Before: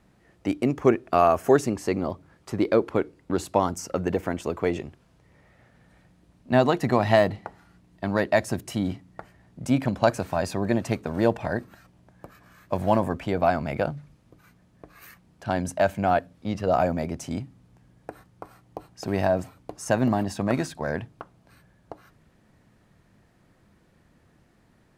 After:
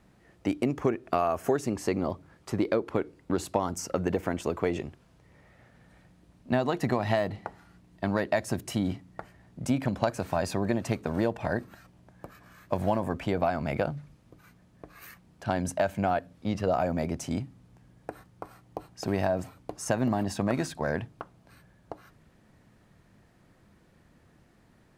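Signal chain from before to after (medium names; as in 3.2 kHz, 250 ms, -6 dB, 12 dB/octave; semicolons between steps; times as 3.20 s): compression 6:1, threshold -22 dBFS, peak gain reduction 9.5 dB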